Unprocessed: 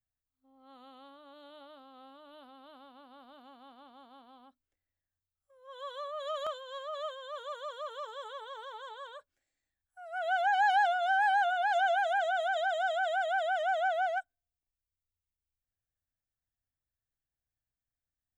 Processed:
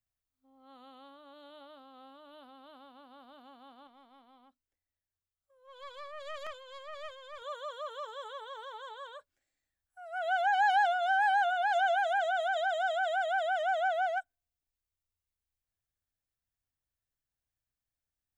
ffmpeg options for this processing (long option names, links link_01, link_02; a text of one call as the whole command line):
ffmpeg -i in.wav -filter_complex "[0:a]asettb=1/sr,asplit=3[link_01][link_02][link_03];[link_01]atrim=end=3.874[link_04];[link_02]atrim=start=3.87:end=7.42,asetpts=PTS-STARTPTS,afade=type=in:duration=0.004:curve=qsin,afade=type=out:start_time=3.546:duration=0.004:curve=qsin,aeval=exprs='(tanh(56.2*val(0)+0.75)-tanh(0.75))/56.2':channel_layout=same[link_05];[link_03]atrim=start=7.416[link_06];[link_04][link_05]acrossfade=duration=0.004:curve1=hsin:curve2=qsin[link_07];[link_07][link_06]acrossfade=duration=0.004:curve1=qsin:curve2=hsin" out.wav